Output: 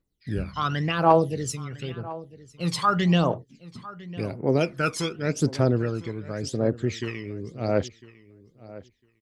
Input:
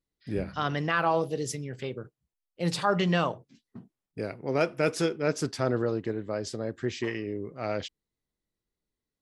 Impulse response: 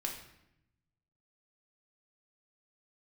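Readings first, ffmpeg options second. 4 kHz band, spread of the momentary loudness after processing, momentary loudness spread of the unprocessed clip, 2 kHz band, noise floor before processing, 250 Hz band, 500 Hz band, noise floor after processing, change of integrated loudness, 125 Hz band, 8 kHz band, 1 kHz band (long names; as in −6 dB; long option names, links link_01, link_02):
+3.0 dB, 18 LU, 12 LU, +0.5 dB, below −85 dBFS, +4.5 dB, +3.0 dB, −66 dBFS, +4.0 dB, +7.0 dB, +3.5 dB, +5.0 dB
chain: -filter_complex "[0:a]aphaser=in_gain=1:out_gain=1:delay=1:decay=0.71:speed=0.9:type=triangular,asplit=2[link_01][link_02];[link_02]adelay=1003,lowpass=frequency=4000:poles=1,volume=-18dB,asplit=2[link_03][link_04];[link_04]adelay=1003,lowpass=frequency=4000:poles=1,volume=0.16[link_05];[link_01][link_03][link_05]amix=inputs=3:normalize=0"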